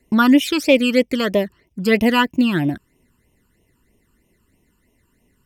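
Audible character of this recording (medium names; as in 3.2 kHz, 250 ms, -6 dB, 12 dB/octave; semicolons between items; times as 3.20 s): phasing stages 12, 3.1 Hz, lowest notch 640–1500 Hz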